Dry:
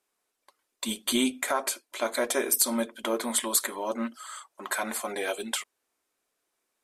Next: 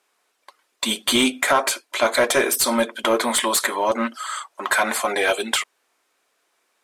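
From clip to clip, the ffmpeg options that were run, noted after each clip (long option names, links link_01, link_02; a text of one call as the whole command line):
ffmpeg -i in.wav -filter_complex "[0:a]asplit=2[link_01][link_02];[link_02]highpass=frequency=720:poles=1,volume=15dB,asoftclip=type=tanh:threshold=-10dB[link_03];[link_01][link_03]amix=inputs=2:normalize=0,lowpass=frequency=3800:poles=1,volume=-6dB,volume=5dB" out.wav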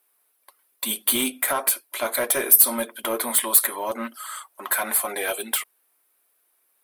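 ffmpeg -i in.wav -af "aexciter=amount=11.9:drive=4.6:freq=9700,volume=-7.5dB" out.wav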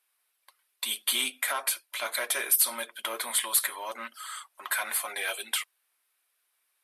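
ffmpeg -i in.wav -af "bandpass=frequency=3300:width_type=q:width=0.59:csg=0" -ar 32000 -c:a libmp3lame -b:a 96k out.mp3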